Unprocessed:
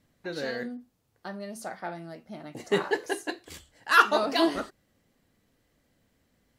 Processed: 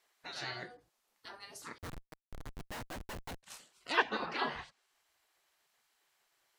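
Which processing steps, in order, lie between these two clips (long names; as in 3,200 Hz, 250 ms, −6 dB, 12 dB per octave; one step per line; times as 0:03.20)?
gate on every frequency bin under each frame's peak −15 dB weak
treble cut that deepens with the level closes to 2,300 Hz, closed at −33.5 dBFS
0:01.78–0:03.43: comparator with hysteresis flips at −43.5 dBFS
level +1 dB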